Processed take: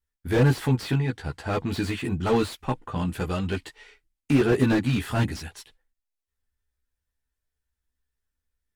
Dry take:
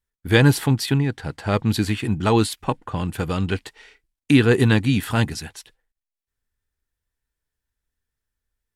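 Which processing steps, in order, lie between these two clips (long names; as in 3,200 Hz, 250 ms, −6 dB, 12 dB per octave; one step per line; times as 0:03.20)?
multi-voice chorus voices 6, 0.44 Hz, delay 14 ms, depth 2.5 ms
slew-rate limiting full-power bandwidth 76 Hz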